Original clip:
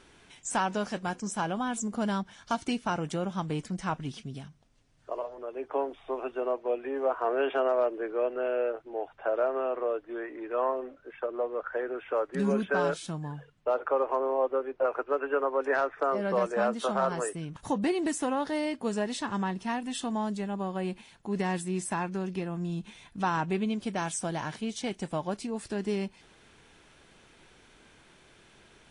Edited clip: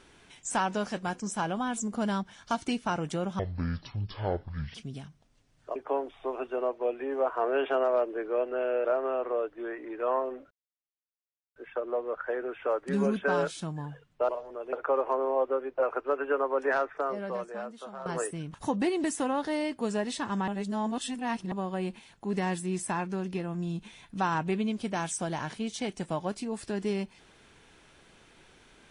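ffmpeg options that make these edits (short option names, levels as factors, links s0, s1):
-filter_complex "[0:a]asplit=11[s0][s1][s2][s3][s4][s5][s6][s7][s8][s9][s10];[s0]atrim=end=3.394[s11];[s1]atrim=start=3.39:end=4.15,asetpts=PTS-STARTPTS,asetrate=24696,aresample=44100[s12];[s2]atrim=start=4.146:end=5.162[s13];[s3]atrim=start=5.598:end=8.692[s14];[s4]atrim=start=9.358:end=11.02,asetpts=PTS-STARTPTS,afade=t=out:st=1.658:d=0.004:c=hsin,apad=pad_dur=1.05[s15];[s5]atrim=start=11.02:end=13.752,asetpts=PTS-STARTPTS,afade=t=in:d=0.004:c=hsin[s16];[s6]atrim=start=5.158:end=5.602[s17];[s7]atrim=start=13.748:end=17.08,asetpts=PTS-STARTPTS,afade=t=out:st=2.042:d=1.29:c=qua:silence=0.188365[s18];[s8]atrim=start=17.08:end=19.502,asetpts=PTS-STARTPTS,afade=t=in:d=0.004:c=hsin:silence=0.188365[s19];[s9]atrim=start=19.498:end=20.542,asetpts=PTS-STARTPTS,areverse[s20];[s10]atrim=start=20.538[s21];[s11][s12]acrossfade=d=0.004:c1=hsin:c2=hsin[s22];[s22][s13]acrossfade=d=0.004:c1=hsin:c2=hsin[s23];[s23][s14]acrossfade=d=0.004:c1=hsin:c2=hsin[s24];[s15][s16]concat=n=2:v=0:a=1[s25];[s24][s25]acrossfade=d=0.004:c1=hsin:c2=hsin[s26];[s26][s17]acrossfade=d=0.004:c1=hsin:c2=hsin[s27];[s18][s19]concat=n=2:v=0:a=1[s28];[s27][s28]acrossfade=d=0.004:c1=hsin:c2=hsin[s29];[s29][s20]acrossfade=d=0.004:c1=hsin:c2=hsin[s30];[s30][s21]acrossfade=d=0.004:c1=hsin:c2=hsin"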